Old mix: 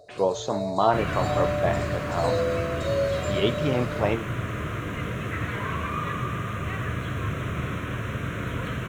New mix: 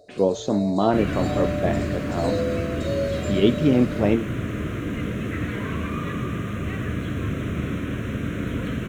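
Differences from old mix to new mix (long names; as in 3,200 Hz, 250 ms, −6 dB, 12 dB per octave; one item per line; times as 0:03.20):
speech: add low-shelf EQ 370 Hz +9 dB
second sound: add low-shelf EQ 400 Hz +4.5 dB
master: add octave-band graphic EQ 125/250/1,000 Hz −5/+7/−7 dB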